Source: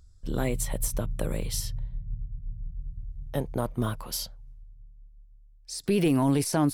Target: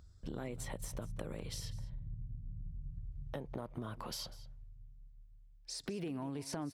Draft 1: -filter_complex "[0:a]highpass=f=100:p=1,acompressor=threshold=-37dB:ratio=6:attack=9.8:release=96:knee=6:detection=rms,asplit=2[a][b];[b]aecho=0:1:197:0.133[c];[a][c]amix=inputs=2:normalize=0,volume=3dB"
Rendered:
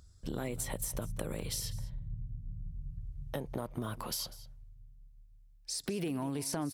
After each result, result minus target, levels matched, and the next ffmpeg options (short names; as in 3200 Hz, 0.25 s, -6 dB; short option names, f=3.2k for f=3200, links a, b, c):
compressor: peak gain reduction -5 dB; 8000 Hz band +3.5 dB
-filter_complex "[0:a]highpass=f=100:p=1,acompressor=threshold=-43dB:ratio=6:attack=9.8:release=96:knee=6:detection=rms,asplit=2[a][b];[b]aecho=0:1:197:0.133[c];[a][c]amix=inputs=2:normalize=0,volume=3dB"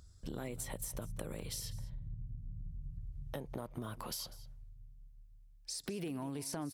8000 Hz band +3.5 dB
-filter_complex "[0:a]highpass=f=100:p=1,equalizer=f=14k:w=0.37:g=-14.5,acompressor=threshold=-43dB:ratio=6:attack=9.8:release=96:knee=6:detection=rms,asplit=2[a][b];[b]aecho=0:1:197:0.133[c];[a][c]amix=inputs=2:normalize=0,volume=3dB"